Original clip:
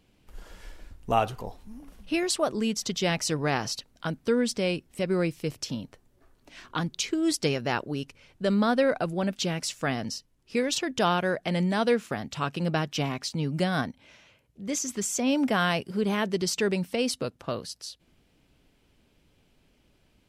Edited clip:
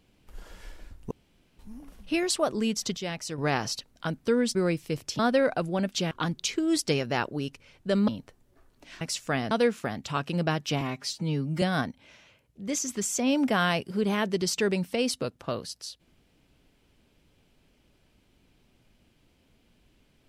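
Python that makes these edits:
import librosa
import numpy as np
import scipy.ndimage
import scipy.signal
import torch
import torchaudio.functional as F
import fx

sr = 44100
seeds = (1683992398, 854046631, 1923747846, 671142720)

y = fx.edit(x, sr, fx.room_tone_fill(start_s=1.11, length_s=0.48),
    fx.clip_gain(start_s=2.97, length_s=0.41, db=-7.5),
    fx.cut(start_s=4.55, length_s=0.54),
    fx.swap(start_s=5.73, length_s=0.93, other_s=8.63, other_length_s=0.92),
    fx.cut(start_s=10.05, length_s=1.73),
    fx.stretch_span(start_s=13.08, length_s=0.54, factor=1.5), tone=tone)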